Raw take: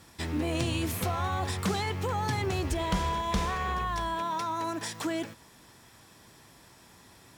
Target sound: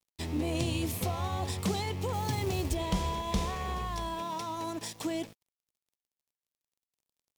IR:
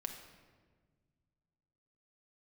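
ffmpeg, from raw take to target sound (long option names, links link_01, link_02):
-filter_complex "[0:a]asettb=1/sr,asplit=3[link_01][link_02][link_03];[link_01]atrim=end=2.134[link_04];[link_02]atrim=start=2.13:end=2.75,asetpts=PTS-STARTPTS,afade=type=in:duration=0.004:curve=qsin,afade=type=out:start_time=0.616:duration=0.004:curve=qsin,acrusher=bits=4:mode=log:mix=0:aa=0.000001[link_05];[link_03]atrim=start=2.746[link_06];[link_04][link_05]acrossfade=duration=0.004:curve1=hsin:curve2=qsin[link_07];[link_07][link_06]acrossfade=duration=0.004:curve1=qsin:curve2=hsin,aeval=exprs='sgn(val(0))*max(abs(val(0))-0.00501,0)':channel_layout=same,equalizer=frequency=1500:width_type=o:width=0.85:gain=-10"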